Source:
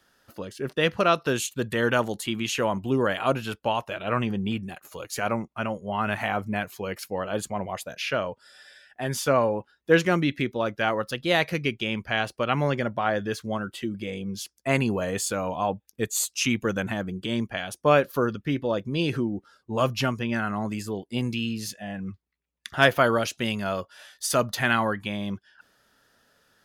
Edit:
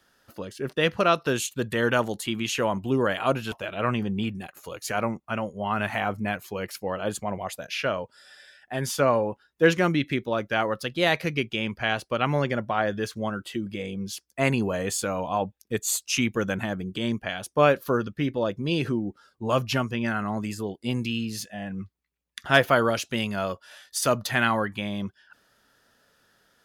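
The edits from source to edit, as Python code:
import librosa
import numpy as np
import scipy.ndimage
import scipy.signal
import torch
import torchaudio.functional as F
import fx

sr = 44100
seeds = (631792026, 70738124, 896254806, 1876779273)

y = fx.edit(x, sr, fx.cut(start_s=3.52, length_s=0.28), tone=tone)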